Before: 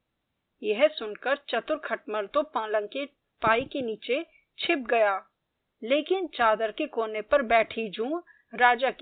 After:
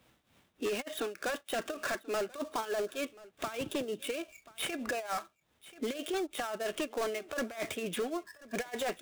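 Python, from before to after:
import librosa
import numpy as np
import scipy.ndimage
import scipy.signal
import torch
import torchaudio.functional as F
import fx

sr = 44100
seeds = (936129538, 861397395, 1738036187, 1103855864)

y = fx.dead_time(x, sr, dead_ms=0.083)
y = scipy.signal.sosfilt(scipy.signal.butter(2, 44.0, 'highpass', fs=sr, output='sos'), y)
y = fx.high_shelf(y, sr, hz=2300.0, db=4.5)
y = fx.over_compress(y, sr, threshold_db=-26.0, ratio=-0.5)
y = fx.tremolo_shape(y, sr, shape='triangle', hz=3.3, depth_pct=85)
y = np.clip(y, -10.0 ** (-28.5 / 20.0), 10.0 ** (-28.5 / 20.0))
y = y + 10.0 ** (-23.5 / 20.0) * np.pad(y, (int(1034 * sr / 1000.0), 0))[:len(y)]
y = fx.band_squash(y, sr, depth_pct=40)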